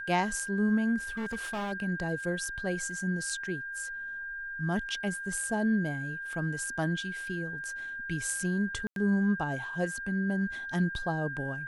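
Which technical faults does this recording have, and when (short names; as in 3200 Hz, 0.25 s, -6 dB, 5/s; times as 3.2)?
tone 1600 Hz -36 dBFS
1.04–1.73 clipped -31 dBFS
8.87–8.96 gap 92 ms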